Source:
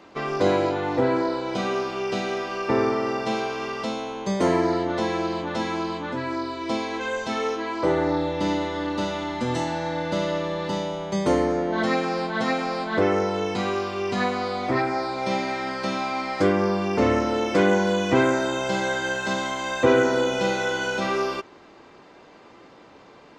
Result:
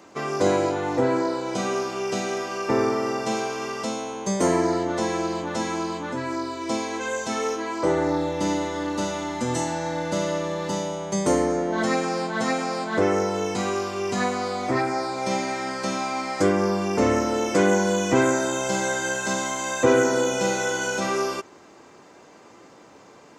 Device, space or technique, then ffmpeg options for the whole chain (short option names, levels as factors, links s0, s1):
budget condenser microphone: -af "highpass=71,highshelf=f=5300:t=q:w=1.5:g=9.5"